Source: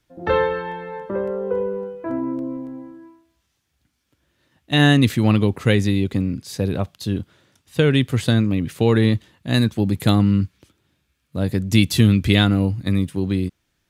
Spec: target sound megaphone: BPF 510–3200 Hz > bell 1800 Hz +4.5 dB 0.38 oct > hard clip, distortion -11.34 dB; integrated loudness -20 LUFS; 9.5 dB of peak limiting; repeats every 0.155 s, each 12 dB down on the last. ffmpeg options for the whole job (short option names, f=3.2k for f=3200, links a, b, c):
-af "alimiter=limit=-11dB:level=0:latency=1,highpass=510,lowpass=3.2k,equalizer=f=1.8k:t=o:w=0.38:g=4.5,aecho=1:1:155|310|465:0.251|0.0628|0.0157,asoftclip=type=hard:threshold=-22.5dB,volume=11.5dB"